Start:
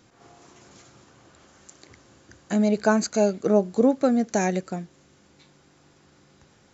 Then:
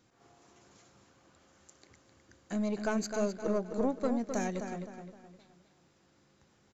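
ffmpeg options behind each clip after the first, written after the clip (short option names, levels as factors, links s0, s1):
-filter_complex "[0:a]aeval=exprs='(tanh(3.98*val(0)+0.4)-tanh(0.4))/3.98':c=same,asplit=2[s0][s1];[s1]adelay=259,lowpass=f=4200:p=1,volume=0.447,asplit=2[s2][s3];[s3]adelay=259,lowpass=f=4200:p=1,volume=0.4,asplit=2[s4][s5];[s5]adelay=259,lowpass=f=4200:p=1,volume=0.4,asplit=2[s6][s7];[s7]adelay=259,lowpass=f=4200:p=1,volume=0.4,asplit=2[s8][s9];[s9]adelay=259,lowpass=f=4200:p=1,volume=0.4[s10];[s0][s2][s4][s6][s8][s10]amix=inputs=6:normalize=0,volume=0.355"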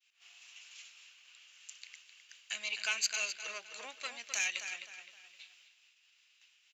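-af "agate=range=0.0224:threshold=0.001:ratio=3:detection=peak,highpass=f=2700:t=q:w=5.6,volume=2.37"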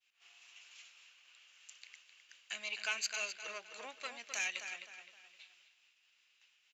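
-af "highshelf=f=2100:g=-8,volume=1.19"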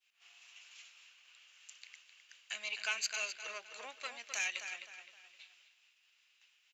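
-af "highpass=f=430:p=1,volume=1.12"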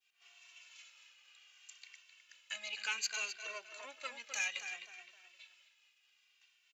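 -filter_complex "[0:a]asplit=2[s0][s1];[s1]adelay=2.1,afreqshift=-0.64[s2];[s0][s2]amix=inputs=2:normalize=1,volume=1.26"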